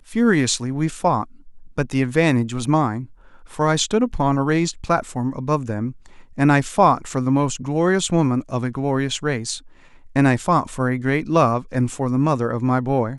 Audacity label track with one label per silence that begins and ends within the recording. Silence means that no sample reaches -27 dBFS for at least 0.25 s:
1.230000	1.780000	silence
3.040000	3.590000	silence
5.910000	6.380000	silence
9.570000	10.160000	silence